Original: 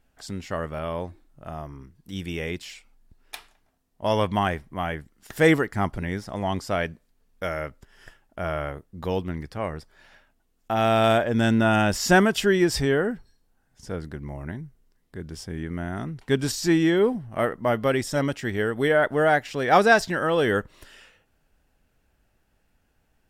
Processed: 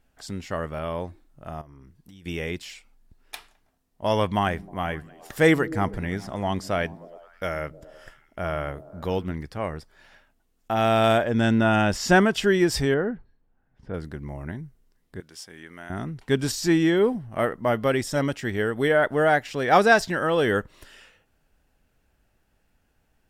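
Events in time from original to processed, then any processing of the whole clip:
1.61–2.26 compressor 12:1, threshold -44 dBFS
4.36–9.33 delay with a stepping band-pass 0.104 s, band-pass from 170 Hz, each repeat 0.7 oct, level -11.5 dB
11.31–12.44 high shelf 9600 Hz -11 dB
12.94–13.94 air absorption 490 m
15.2–15.9 HPF 1300 Hz 6 dB/oct

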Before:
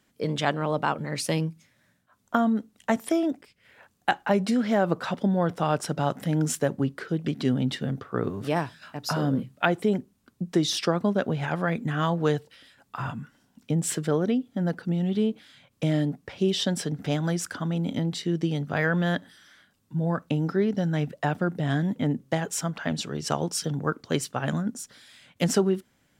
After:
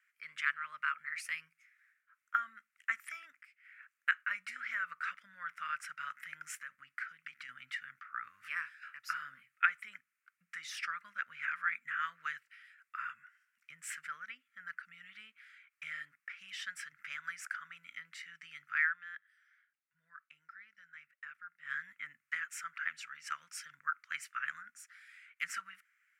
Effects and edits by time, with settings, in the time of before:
6.55–7.49 compressor, threshold -24 dBFS
18.82–21.75 dip -12 dB, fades 0.14 s
whole clip: elliptic high-pass 1300 Hz, stop band 40 dB; resonant high shelf 2800 Hz -9 dB, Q 3; gain -4.5 dB

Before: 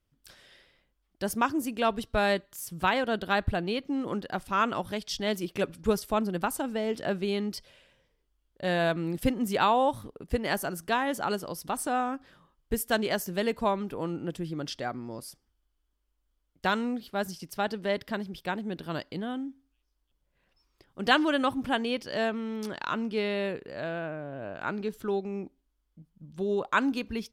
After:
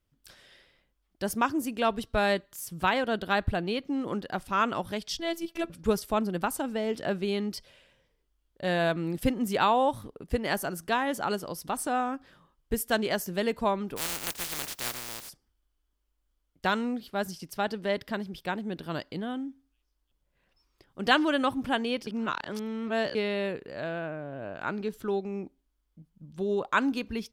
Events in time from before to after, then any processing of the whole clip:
5.19–5.7 robotiser 334 Hz
13.96–15.28 spectral contrast lowered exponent 0.13
22.07–23.15 reverse

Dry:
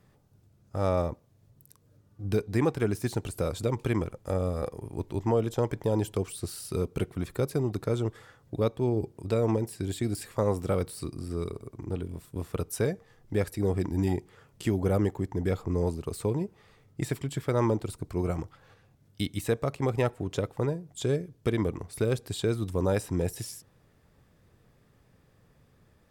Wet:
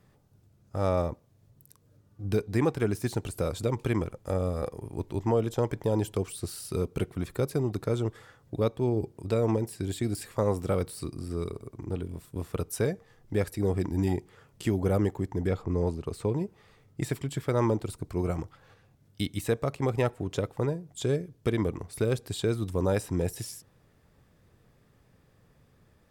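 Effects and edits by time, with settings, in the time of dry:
15.47–16.35 high shelf 7800 Hz -11.5 dB

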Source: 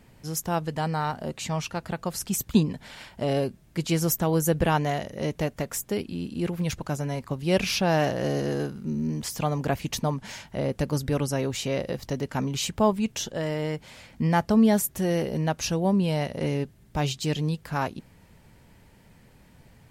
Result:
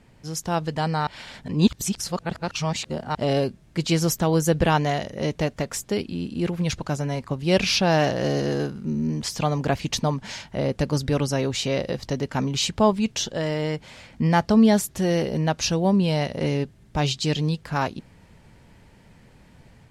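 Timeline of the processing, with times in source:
1.07–3.15 reverse
whole clip: Bessel low-pass 7800 Hz, order 2; dynamic EQ 4400 Hz, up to +5 dB, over -48 dBFS, Q 1.3; AGC gain up to 3 dB

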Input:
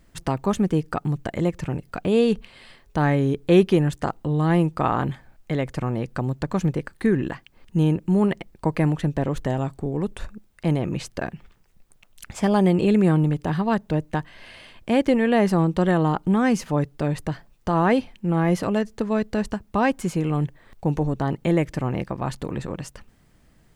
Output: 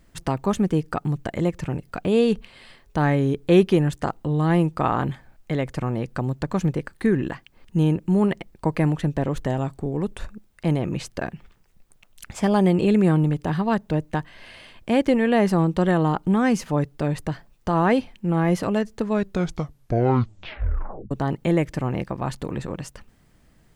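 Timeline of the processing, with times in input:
19.1 tape stop 2.01 s

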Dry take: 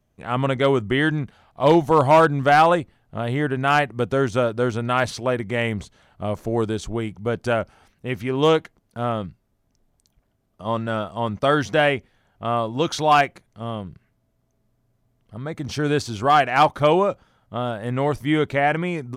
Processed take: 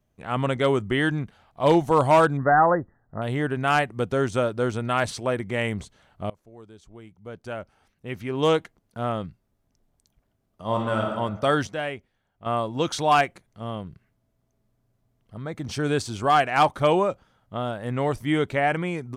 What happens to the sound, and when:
2.37–3.22 brick-wall FIR low-pass 2000 Hz
6.3–8.57 fade in quadratic, from -23 dB
10.65–11.09 reverb throw, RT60 1.1 s, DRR 0 dB
11.67–12.46 gain -8.5 dB
whole clip: dynamic EQ 8400 Hz, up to +6 dB, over -53 dBFS, Q 2.7; gain -3 dB

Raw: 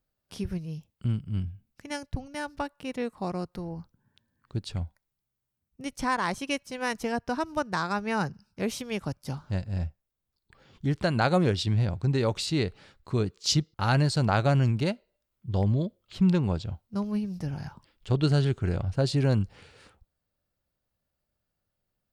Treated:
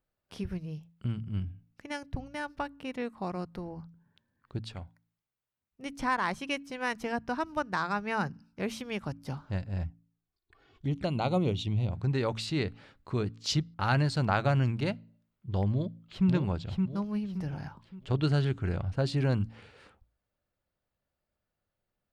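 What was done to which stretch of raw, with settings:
4.67–5.83 low shelf 350 Hz -9 dB
9.83–11.92 envelope flanger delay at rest 2.9 ms, full sweep at -23.5 dBFS
15.71–16.28 echo throw 0.57 s, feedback 35%, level -3.5 dB
whole clip: tone controls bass -3 dB, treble -9 dB; de-hum 55.94 Hz, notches 5; dynamic EQ 480 Hz, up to -4 dB, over -39 dBFS, Q 0.84

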